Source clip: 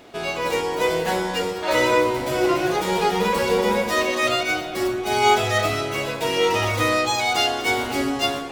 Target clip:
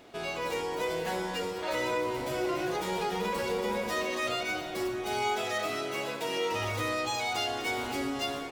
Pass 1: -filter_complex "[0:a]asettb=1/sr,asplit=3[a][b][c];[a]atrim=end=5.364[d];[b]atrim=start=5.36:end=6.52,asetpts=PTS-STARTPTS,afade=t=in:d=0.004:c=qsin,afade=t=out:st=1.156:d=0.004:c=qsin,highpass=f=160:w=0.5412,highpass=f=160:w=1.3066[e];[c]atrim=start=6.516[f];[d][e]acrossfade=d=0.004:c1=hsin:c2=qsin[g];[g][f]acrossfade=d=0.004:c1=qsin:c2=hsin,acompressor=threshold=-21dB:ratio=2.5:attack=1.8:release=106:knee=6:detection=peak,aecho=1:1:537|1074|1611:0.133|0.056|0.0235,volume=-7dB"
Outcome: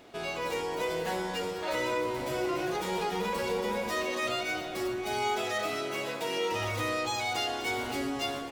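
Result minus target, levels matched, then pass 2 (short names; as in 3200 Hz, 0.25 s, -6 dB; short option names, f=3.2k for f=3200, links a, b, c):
echo 0.228 s early
-filter_complex "[0:a]asettb=1/sr,asplit=3[a][b][c];[a]atrim=end=5.364[d];[b]atrim=start=5.36:end=6.52,asetpts=PTS-STARTPTS,afade=t=in:d=0.004:c=qsin,afade=t=out:st=1.156:d=0.004:c=qsin,highpass=f=160:w=0.5412,highpass=f=160:w=1.3066[e];[c]atrim=start=6.516[f];[d][e]acrossfade=d=0.004:c1=hsin:c2=qsin[g];[g][f]acrossfade=d=0.004:c1=qsin:c2=hsin,acompressor=threshold=-21dB:ratio=2.5:attack=1.8:release=106:knee=6:detection=peak,aecho=1:1:765|1530|2295:0.133|0.056|0.0235,volume=-7dB"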